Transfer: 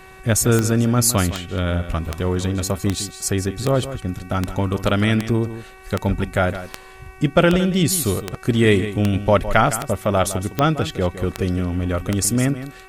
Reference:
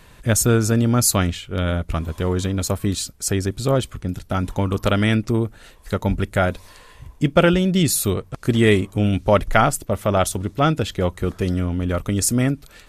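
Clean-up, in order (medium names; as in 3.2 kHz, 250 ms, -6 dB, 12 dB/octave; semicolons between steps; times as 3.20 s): de-click; de-hum 378.1 Hz, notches 7; expander -31 dBFS, range -21 dB; inverse comb 160 ms -12.5 dB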